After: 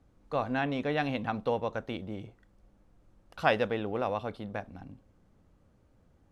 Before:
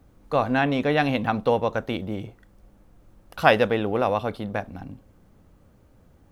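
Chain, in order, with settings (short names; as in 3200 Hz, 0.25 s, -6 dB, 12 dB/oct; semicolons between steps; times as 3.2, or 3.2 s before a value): LPF 8900 Hz 12 dB/oct; gain -8.5 dB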